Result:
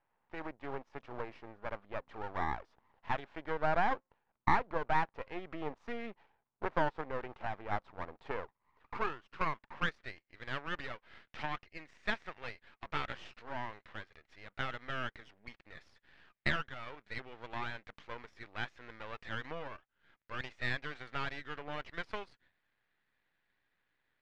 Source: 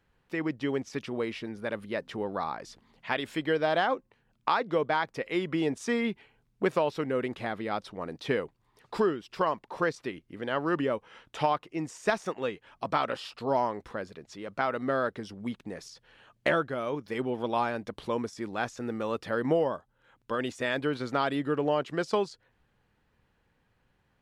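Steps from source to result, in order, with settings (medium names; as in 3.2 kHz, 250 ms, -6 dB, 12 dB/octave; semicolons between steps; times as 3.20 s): band-pass sweep 890 Hz -> 2 kHz, 8.30–10.30 s; half-wave rectifier; Bessel low-pass 3.2 kHz, order 2; trim +5 dB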